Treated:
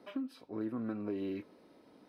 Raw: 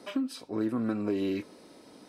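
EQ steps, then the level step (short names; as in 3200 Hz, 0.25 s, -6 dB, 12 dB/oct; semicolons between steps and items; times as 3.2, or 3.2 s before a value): bell 7600 Hz -15 dB 1.4 oct; -7.5 dB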